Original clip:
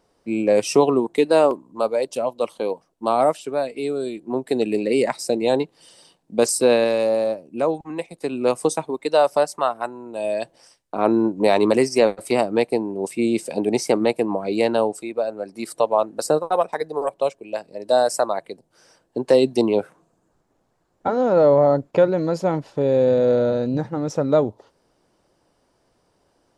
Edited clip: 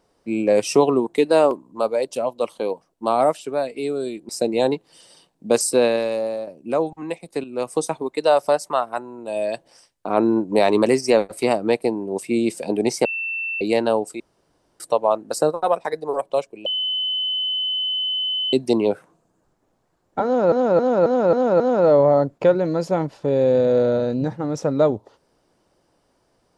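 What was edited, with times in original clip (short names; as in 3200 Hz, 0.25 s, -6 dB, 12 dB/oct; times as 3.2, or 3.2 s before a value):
4.29–5.17 cut
6.53–7.35 fade out, to -7.5 dB
8.32–8.8 fade in, from -12 dB
13.93–14.49 bleep 2680 Hz -23.5 dBFS
15.08–15.68 room tone
17.54–19.41 bleep 3030 Hz -20.5 dBFS
21.13–21.4 loop, 6 plays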